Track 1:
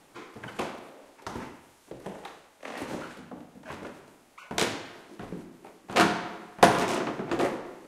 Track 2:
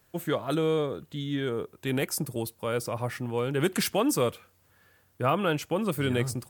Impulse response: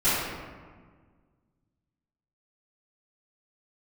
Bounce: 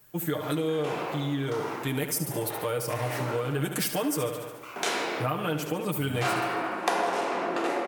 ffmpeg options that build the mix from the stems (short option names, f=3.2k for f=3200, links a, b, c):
-filter_complex "[0:a]highpass=390,adelay=250,volume=1.5dB,asplit=2[a][b];[b]volume=-10.5dB[c];[1:a]highshelf=f=11k:g=11,aecho=1:1:6.6:0.91,volume=-0.5dB,asplit=3[d][e][f];[e]volume=-10dB[g];[f]apad=whole_len=358193[h];[a][h]sidechaincompress=threshold=-28dB:ratio=8:attack=16:release=1200[i];[2:a]atrim=start_sample=2205[j];[c][j]afir=irnorm=-1:irlink=0[k];[g]aecho=0:1:72|144|216|288|360|432|504|576:1|0.55|0.303|0.166|0.0915|0.0503|0.0277|0.0152[l];[i][d][k][l]amix=inputs=4:normalize=0,acompressor=threshold=-26dB:ratio=4"